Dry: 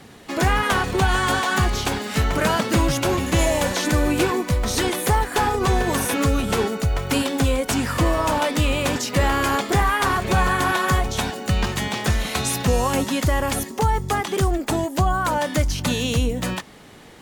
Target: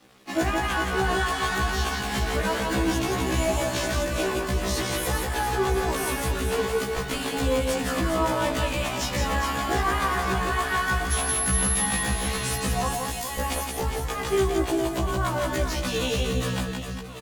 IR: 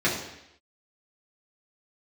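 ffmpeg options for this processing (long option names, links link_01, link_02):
-filter_complex "[0:a]asettb=1/sr,asplit=3[link_01][link_02][link_03];[link_01]atrim=end=6.474[link_04];[link_02]atrim=start=6.47:end=6.98,asetpts=PTS-STARTPTS,afade=type=in:duration=0.004:curve=qsin,afade=type=out:start_time=0.506:duration=0.004:curve=qsin,highpass=310[link_05];[link_03]atrim=start=6.976[link_06];[link_04][link_05]acrossfade=duration=0.004:curve1=hsin:curve2=qsin[link_07];[link_07][link_06]acrossfade=duration=0.004:curve1=qsin:curve2=hsin,asettb=1/sr,asplit=3[link_08][link_09][link_10];[link_08]atrim=end=12.934[link_11];[link_09]atrim=start=12.93:end=13.39,asetpts=PTS-STARTPTS,afade=type=in:duration=0.004:curve=qsin,afade=type=out:start_time=0.456:duration=0.004:curve=qsin,aderivative[link_12];[link_10]atrim=start=13.386[link_13];[link_11][link_12]acrossfade=duration=0.004:curve1=hsin:curve2=qsin[link_14];[link_14][link_13]acrossfade=duration=0.004:curve1=qsin:curve2=hsin,alimiter=limit=-16dB:level=0:latency=1:release=210,flanger=delay=2:depth=1:regen=67:speed=1.2:shape=sinusoidal,aeval=exprs='sgn(val(0))*max(abs(val(0))-0.00398,0)':channel_layout=same,asettb=1/sr,asplit=3[link_15][link_16][link_17];[link_15]atrim=end=11.124[link_18];[link_16]atrim=start=11.12:end=11.86,asetpts=PTS-STARTPTS,afade=type=in:duration=0.004:curve=qsin,afade=type=out:start_time=0.736:duration=0.004:curve=qsin,aeval=exprs='val(0)+0.0631*sin(2*PI*11000*n/s)':channel_layout=same[link_19];[link_17]atrim=start=11.856[link_20];[link_18][link_19]acrossfade=duration=0.004:curve1=hsin:curve2=qsin[link_21];[link_21][link_20]acrossfade=duration=0.004:curve1=qsin:curve2=hsin,aecho=1:1:170|408|741.2|1208|1861:0.631|0.398|0.251|0.158|0.1,asplit=2[link_22][link_23];[1:a]atrim=start_sample=2205[link_24];[link_23][link_24]afir=irnorm=-1:irlink=0,volume=-24.5dB[link_25];[link_22][link_25]amix=inputs=2:normalize=0,afftfilt=real='re*1.73*eq(mod(b,3),0)':imag='im*1.73*eq(mod(b,3),0)':win_size=2048:overlap=0.75,volume=5dB"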